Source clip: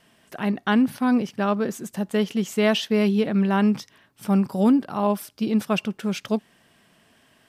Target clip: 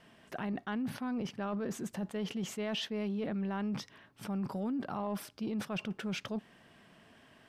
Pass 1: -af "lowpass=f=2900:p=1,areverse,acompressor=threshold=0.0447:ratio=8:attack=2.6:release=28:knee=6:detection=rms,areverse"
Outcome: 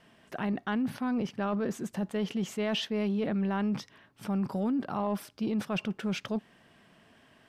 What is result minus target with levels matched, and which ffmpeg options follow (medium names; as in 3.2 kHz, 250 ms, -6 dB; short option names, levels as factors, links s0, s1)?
compression: peak gain reduction -5.5 dB
-af "lowpass=f=2900:p=1,areverse,acompressor=threshold=0.0211:ratio=8:attack=2.6:release=28:knee=6:detection=rms,areverse"